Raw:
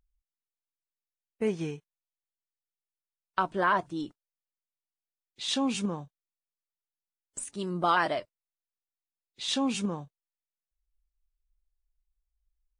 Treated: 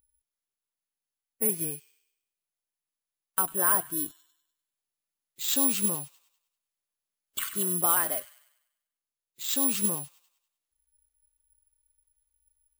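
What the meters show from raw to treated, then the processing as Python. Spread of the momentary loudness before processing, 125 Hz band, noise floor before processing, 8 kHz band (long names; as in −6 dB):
14 LU, −3.0 dB, below −85 dBFS, +14.5 dB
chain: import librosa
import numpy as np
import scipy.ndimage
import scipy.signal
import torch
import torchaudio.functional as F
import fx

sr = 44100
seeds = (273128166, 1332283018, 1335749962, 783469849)

y = fx.notch(x, sr, hz=790.0, q=23.0)
y = fx.rider(y, sr, range_db=10, speed_s=0.5)
y = fx.echo_wet_highpass(y, sr, ms=98, feedback_pct=47, hz=2500.0, wet_db=-10)
y = (np.kron(y[::4], np.eye(4)[0]) * 4)[:len(y)]
y = F.gain(torch.from_numpy(y), -1.5).numpy()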